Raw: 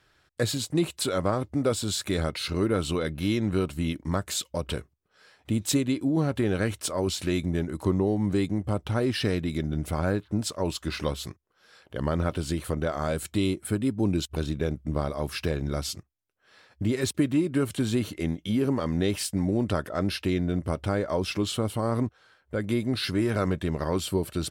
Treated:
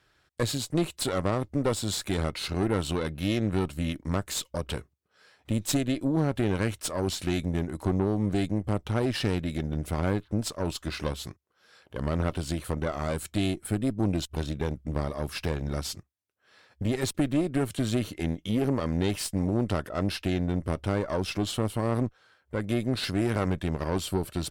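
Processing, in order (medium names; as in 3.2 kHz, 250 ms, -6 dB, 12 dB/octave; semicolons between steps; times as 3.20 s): valve stage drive 20 dB, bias 0.75; trim +2.5 dB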